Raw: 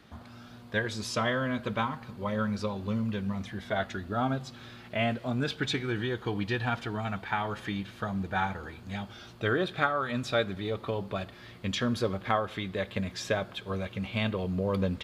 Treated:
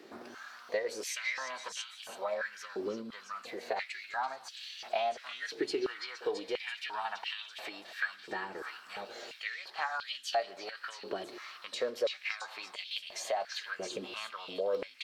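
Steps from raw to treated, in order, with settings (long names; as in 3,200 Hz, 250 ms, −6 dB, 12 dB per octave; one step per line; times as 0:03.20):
downward compressor, threshold −36 dBFS, peak gain reduction 14.5 dB
echo through a band-pass that steps 334 ms, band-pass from 3,300 Hz, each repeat 0.7 octaves, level −2.5 dB
formants moved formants +3 semitones
high-pass on a step sequencer 2.9 Hz 360–3,100 Hz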